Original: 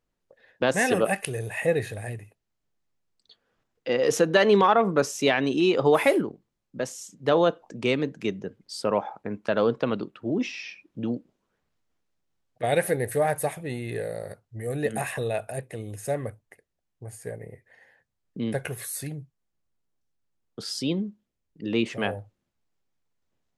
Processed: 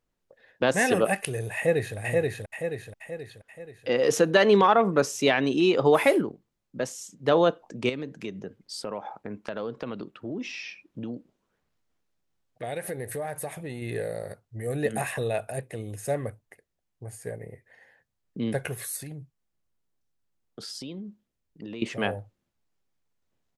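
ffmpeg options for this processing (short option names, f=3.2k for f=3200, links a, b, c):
-filter_complex "[0:a]asplit=2[a][b];[b]afade=t=in:st=1.56:d=0.01,afade=t=out:st=1.97:d=0.01,aecho=0:1:480|960|1440|1920|2400|2880|3360:0.841395|0.420698|0.210349|0.105174|0.0525872|0.0262936|0.0131468[c];[a][c]amix=inputs=2:normalize=0,asettb=1/sr,asplit=3[d][e][f];[d]atrim=end=7.894[g];[e]atrim=start=7.89:end=13.82,asetpts=PTS-STARTPTS,afade=t=in:d=0.004:c=qsin,afade=t=out:st=5.926:d=0.004:c=qsin,acompressor=threshold=-32dB:ratio=3:attack=3.2:release=140:knee=1:detection=peak[h];[f]atrim=start=13.816[i];[g][h]acrossfade=d=0.004:c1=hsin:c2=qsin[j];[j][i]acrossfade=d=0.004:c1=qsin:c2=hsin,asettb=1/sr,asplit=3[k][l][m];[k]atrim=end=18.964[n];[l]atrim=start=18.96:end=21.82,asetpts=PTS-STARTPTS,afade=t=in:d=0.004:c=qsin,afade=t=out:st=2.856:d=0.004:c=qsin,acompressor=threshold=-35dB:ratio=6:attack=3.2:release=140:knee=1:detection=peak[o];[m]atrim=start=21.816[p];[n][o]acrossfade=d=0.004:c1=hsin:c2=qsin[q];[q][p]acrossfade=d=0.004:c1=qsin:c2=hsin"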